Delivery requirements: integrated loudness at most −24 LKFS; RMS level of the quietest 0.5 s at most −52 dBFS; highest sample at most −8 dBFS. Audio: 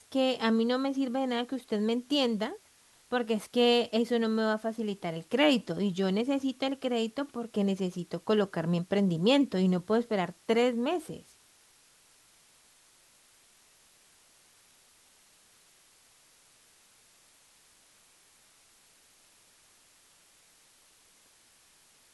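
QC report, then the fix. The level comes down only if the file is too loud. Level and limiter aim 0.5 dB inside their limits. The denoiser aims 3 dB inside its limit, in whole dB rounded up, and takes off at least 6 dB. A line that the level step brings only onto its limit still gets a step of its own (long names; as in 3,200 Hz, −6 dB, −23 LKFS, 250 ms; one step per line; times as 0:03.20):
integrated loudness −29.0 LKFS: in spec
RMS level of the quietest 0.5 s −62 dBFS: in spec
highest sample −13.5 dBFS: in spec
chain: no processing needed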